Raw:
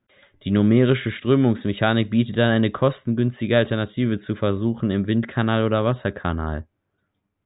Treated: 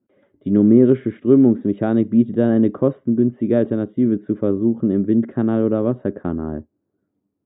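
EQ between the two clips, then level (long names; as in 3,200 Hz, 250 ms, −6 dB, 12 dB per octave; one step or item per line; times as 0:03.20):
resonant band-pass 300 Hz, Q 1.7
high-frequency loss of the air 180 metres
+8.0 dB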